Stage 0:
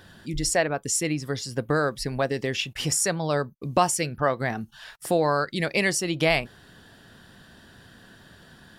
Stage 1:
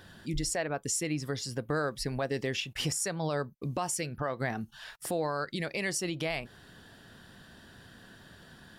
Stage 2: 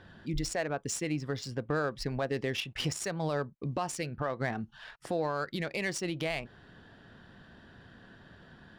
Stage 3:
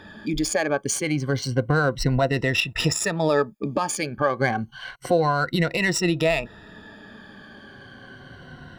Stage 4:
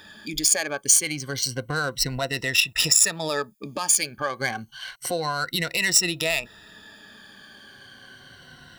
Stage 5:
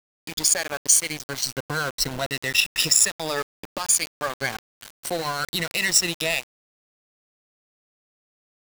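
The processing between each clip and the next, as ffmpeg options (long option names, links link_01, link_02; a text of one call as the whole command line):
ffmpeg -i in.wav -af "alimiter=limit=-19.5dB:level=0:latency=1:release=181,volume=-2.5dB" out.wav
ffmpeg -i in.wav -af "adynamicsmooth=sensitivity=6.5:basefreq=3200" out.wav
ffmpeg -i in.wav -af "afftfilt=real='re*pow(10,15/40*sin(2*PI*(2*log(max(b,1)*sr/1024/100)/log(2)-(-0.29)*(pts-256)/sr)))':imag='im*pow(10,15/40*sin(2*PI*(2*log(max(b,1)*sr/1024/100)/log(2)-(-0.29)*(pts-256)/sr)))':win_size=1024:overlap=0.75,volume=8.5dB" out.wav
ffmpeg -i in.wav -af "crystalizer=i=9:c=0,volume=-9.5dB" out.wav
ffmpeg -i in.wav -af "aeval=exprs='val(0)*gte(abs(val(0)),0.0398)':channel_layout=same" out.wav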